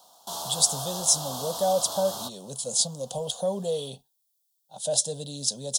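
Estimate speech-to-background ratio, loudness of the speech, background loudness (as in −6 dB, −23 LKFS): 7.0 dB, −26.5 LKFS, −33.5 LKFS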